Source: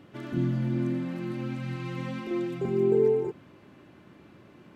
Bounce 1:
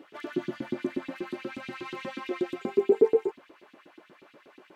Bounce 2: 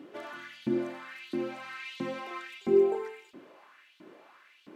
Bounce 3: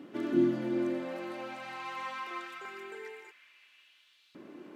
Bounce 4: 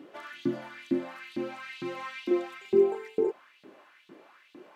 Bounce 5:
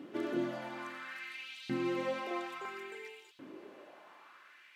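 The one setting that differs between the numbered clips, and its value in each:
LFO high-pass, rate: 8.3, 1.5, 0.23, 2.2, 0.59 Hz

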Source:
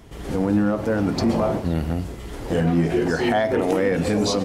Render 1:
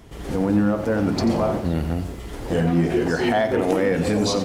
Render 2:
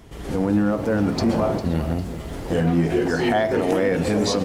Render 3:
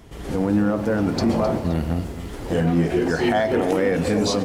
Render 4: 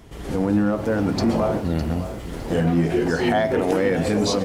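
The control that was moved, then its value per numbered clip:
lo-fi delay, time: 88, 402, 261, 608 ms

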